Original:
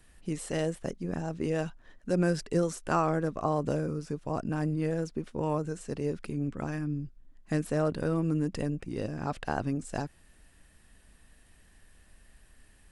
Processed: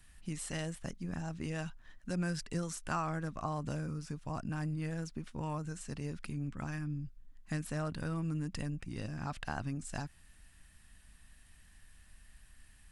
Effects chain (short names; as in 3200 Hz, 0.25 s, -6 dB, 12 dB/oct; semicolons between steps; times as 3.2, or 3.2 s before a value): bell 440 Hz -13.5 dB 1.4 oct; compressor 1.5:1, threshold -37 dBFS, peak gain reduction 4.5 dB